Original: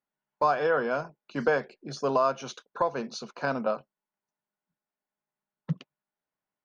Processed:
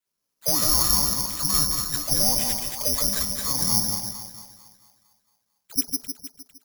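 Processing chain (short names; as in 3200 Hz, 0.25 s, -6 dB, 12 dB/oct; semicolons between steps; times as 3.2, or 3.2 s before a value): dynamic EQ 2000 Hz, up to +5 dB, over -40 dBFS, Q 0.75; limiter -22 dBFS, peak gain reduction 10 dB; dispersion lows, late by 81 ms, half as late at 1100 Hz; one-sided clip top -26.5 dBFS; on a send: split-band echo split 1300 Hz, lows 0.154 s, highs 0.226 s, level -4 dB; on the sum: frequency shift -430 Hz; careless resampling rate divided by 8×, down none, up zero stuff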